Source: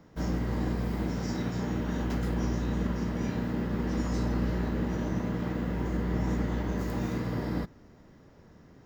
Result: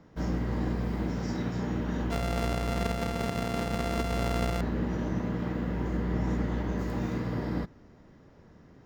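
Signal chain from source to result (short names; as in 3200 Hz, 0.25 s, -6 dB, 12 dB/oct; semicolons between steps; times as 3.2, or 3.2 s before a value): 2.11–4.61 sample sorter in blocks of 64 samples; high shelf 7600 Hz -9.5 dB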